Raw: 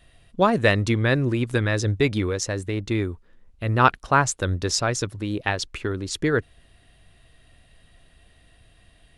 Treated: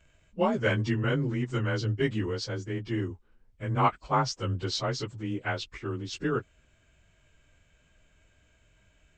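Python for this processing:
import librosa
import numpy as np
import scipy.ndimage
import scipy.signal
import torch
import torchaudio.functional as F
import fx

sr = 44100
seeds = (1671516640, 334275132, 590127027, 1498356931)

y = fx.partial_stretch(x, sr, pct=92)
y = y * 10.0 ** (-5.0 / 20.0)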